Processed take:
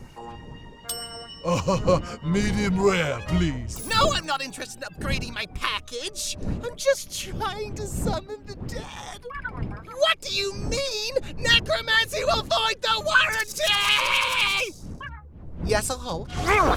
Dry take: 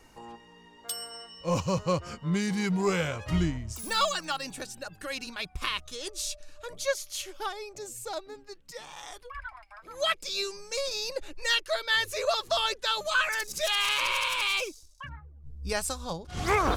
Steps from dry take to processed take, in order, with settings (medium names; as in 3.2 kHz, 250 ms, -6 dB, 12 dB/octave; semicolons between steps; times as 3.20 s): wind noise 170 Hz -39 dBFS; sweeping bell 4.2 Hz 440–3200 Hz +7 dB; trim +3.5 dB